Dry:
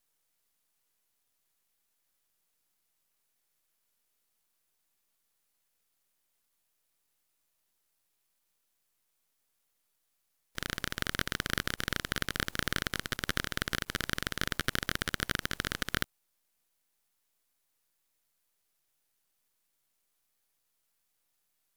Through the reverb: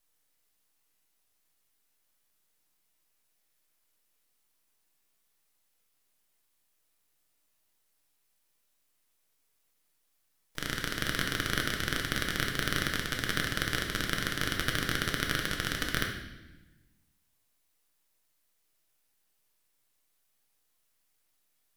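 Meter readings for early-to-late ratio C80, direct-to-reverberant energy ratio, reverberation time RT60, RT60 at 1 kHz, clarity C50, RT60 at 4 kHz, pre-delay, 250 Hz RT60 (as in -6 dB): 7.5 dB, 0.5 dB, 1.0 s, 0.95 s, 4.5 dB, 1.0 s, 3 ms, 1.6 s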